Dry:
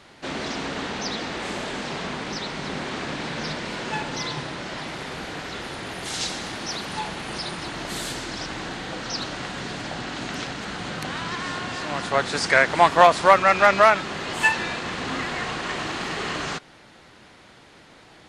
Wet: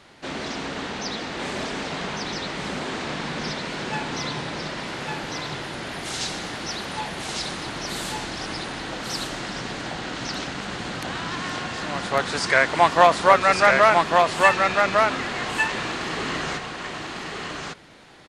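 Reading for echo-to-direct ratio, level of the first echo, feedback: -3.0 dB, -3.0 dB, no regular repeats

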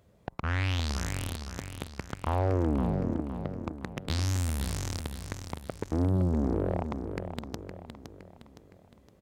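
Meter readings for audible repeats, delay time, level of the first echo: 4, 514 ms, -8.0 dB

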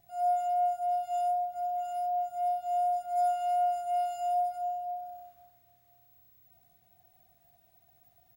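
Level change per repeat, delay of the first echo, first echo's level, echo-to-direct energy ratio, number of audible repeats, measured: -11.5 dB, 508 ms, -18.0 dB, -17.5 dB, 2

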